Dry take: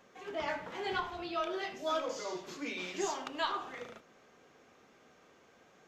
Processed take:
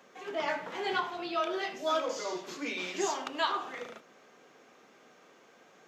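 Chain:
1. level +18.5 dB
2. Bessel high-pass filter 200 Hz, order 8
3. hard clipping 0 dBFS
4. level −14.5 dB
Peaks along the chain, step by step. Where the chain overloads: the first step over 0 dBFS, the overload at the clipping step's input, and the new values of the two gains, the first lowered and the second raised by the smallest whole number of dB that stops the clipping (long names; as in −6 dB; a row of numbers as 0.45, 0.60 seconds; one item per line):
−1.5, −2.5, −2.5, −17.0 dBFS
no step passes full scale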